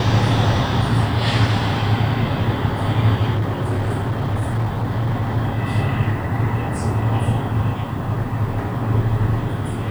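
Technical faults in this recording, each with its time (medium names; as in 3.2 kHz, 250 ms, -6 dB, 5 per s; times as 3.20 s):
3.35–5.38 s: clipped -17 dBFS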